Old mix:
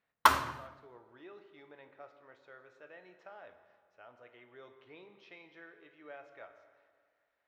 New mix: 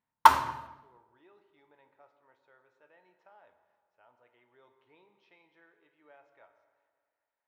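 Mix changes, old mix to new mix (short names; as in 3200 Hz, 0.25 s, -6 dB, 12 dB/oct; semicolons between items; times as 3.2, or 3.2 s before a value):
speech -10.0 dB; master: add bell 910 Hz +12.5 dB 0.23 oct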